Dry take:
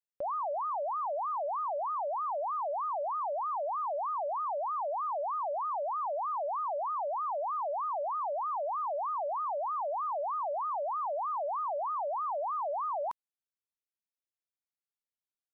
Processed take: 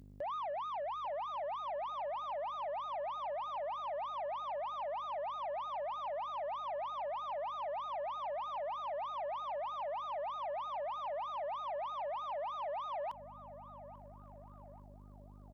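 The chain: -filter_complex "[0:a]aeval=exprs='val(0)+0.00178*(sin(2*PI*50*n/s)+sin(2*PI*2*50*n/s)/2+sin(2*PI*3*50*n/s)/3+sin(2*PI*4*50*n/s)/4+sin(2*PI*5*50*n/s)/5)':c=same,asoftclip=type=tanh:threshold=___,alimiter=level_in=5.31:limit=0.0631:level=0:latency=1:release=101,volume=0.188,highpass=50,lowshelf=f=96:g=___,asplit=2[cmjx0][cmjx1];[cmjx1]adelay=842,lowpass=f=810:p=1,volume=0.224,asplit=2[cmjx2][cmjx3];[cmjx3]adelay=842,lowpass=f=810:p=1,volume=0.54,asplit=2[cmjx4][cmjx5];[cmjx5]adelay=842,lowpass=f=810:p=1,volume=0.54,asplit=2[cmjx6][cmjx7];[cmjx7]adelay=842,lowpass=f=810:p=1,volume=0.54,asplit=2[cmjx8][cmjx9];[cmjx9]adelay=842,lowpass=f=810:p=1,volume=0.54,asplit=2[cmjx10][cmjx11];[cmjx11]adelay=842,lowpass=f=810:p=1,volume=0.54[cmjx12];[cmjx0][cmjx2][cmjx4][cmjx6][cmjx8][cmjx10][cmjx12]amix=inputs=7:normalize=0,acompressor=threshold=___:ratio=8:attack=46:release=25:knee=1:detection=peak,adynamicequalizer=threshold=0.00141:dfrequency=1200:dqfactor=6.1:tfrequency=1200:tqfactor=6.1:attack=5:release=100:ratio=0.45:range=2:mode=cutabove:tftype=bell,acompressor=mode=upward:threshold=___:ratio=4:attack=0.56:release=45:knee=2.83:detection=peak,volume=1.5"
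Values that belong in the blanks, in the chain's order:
0.0251, -6.5, 0.00631, 0.00282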